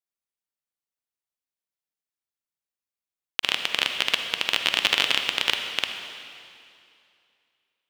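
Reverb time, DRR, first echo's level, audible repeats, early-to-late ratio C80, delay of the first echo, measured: 2.5 s, 5.0 dB, no echo audible, no echo audible, 6.5 dB, no echo audible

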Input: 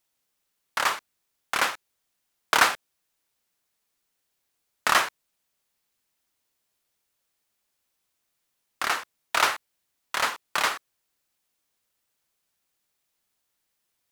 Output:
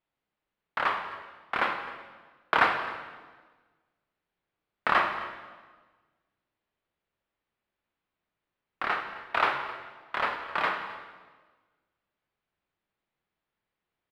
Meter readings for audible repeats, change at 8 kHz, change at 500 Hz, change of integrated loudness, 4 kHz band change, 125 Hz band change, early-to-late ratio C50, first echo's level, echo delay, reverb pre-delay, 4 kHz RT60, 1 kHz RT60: 1, below −25 dB, 0.0 dB, −4.0 dB, −9.5 dB, +2.0 dB, 7.0 dB, −17.5 dB, 261 ms, 14 ms, 1.2 s, 1.3 s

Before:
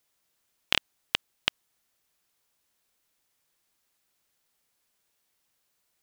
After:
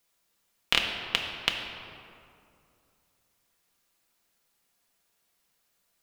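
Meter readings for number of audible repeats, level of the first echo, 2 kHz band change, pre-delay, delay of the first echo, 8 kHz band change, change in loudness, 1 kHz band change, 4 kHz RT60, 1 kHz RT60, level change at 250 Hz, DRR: no echo audible, no echo audible, +2.5 dB, 4 ms, no echo audible, +1.0 dB, +1.5 dB, +3.0 dB, 1.3 s, 2.4 s, +3.0 dB, 0.5 dB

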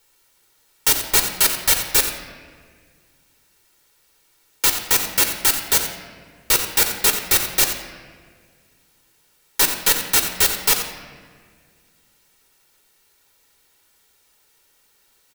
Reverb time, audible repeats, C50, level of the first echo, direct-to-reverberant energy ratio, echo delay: 1.8 s, 1, 6.0 dB, −11.0 dB, 4.0 dB, 88 ms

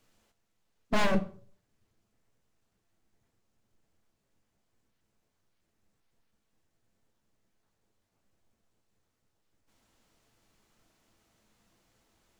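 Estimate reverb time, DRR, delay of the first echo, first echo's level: 0.45 s, 8.0 dB, no echo audible, no echo audible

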